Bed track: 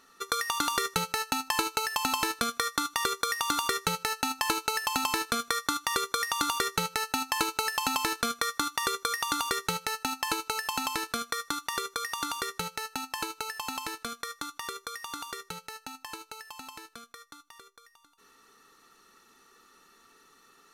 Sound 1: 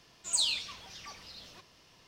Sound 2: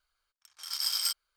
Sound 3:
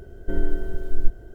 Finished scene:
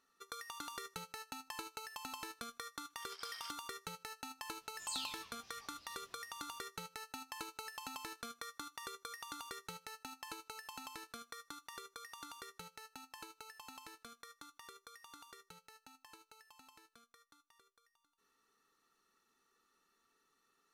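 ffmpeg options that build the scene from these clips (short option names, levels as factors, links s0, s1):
-filter_complex "[0:a]volume=0.126[s0];[2:a]lowpass=2800[s1];[1:a]flanger=delay=17.5:depth=6.8:speed=1.7[s2];[s1]atrim=end=1.36,asetpts=PTS-STARTPTS,volume=0.299,afade=t=in:d=0.004:c=hsin,afade=t=out:st=1.356:d=0.004:c=hsin,adelay=2390[s3];[s2]atrim=end=2.07,asetpts=PTS-STARTPTS,volume=0.299,afade=t=in:d=0.004:c=hsin,afade=t=out:st=2.066:d=0.004:c=hsin,adelay=4540[s4];[s0][s3][s4]amix=inputs=3:normalize=0"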